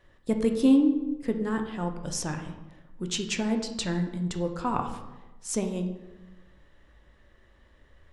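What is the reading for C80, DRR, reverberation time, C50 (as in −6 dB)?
10.5 dB, 4.5 dB, 1.1 s, 8.0 dB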